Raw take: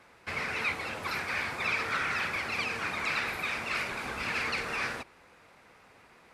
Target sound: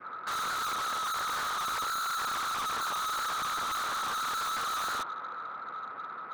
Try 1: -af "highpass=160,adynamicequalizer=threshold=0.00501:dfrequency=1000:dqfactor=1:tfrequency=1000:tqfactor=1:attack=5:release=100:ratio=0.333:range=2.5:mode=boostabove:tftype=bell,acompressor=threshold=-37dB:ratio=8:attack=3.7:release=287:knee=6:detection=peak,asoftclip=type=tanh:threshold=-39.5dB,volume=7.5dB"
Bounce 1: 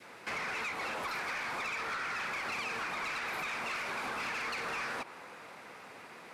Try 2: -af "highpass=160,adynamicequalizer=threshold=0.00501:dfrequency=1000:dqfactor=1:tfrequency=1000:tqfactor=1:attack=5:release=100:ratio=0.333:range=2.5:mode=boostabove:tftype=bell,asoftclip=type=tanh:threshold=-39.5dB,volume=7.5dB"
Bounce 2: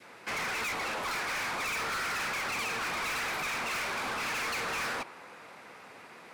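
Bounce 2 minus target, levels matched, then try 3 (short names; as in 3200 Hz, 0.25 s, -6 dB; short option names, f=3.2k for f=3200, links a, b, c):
1000 Hz band -5.0 dB
-af "highpass=160,adynamicequalizer=threshold=0.00501:dfrequency=1000:dqfactor=1:tfrequency=1000:tqfactor=1:attack=5:release=100:ratio=0.333:range=2.5:mode=boostabove:tftype=bell,lowpass=f=1.3k:t=q:w=14,asoftclip=type=tanh:threshold=-39.5dB,volume=7.5dB"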